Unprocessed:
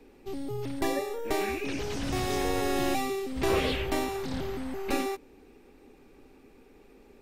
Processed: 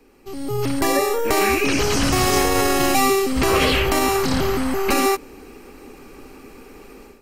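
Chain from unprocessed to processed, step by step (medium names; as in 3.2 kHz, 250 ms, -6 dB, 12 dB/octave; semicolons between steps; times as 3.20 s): peak limiter -23 dBFS, peak gain reduction 8 dB; peaking EQ 1.2 kHz +6.5 dB 0.47 oct; level rider gain up to 13 dB; treble shelf 3.2 kHz +7.5 dB; band-stop 3.6 kHz, Q 8.6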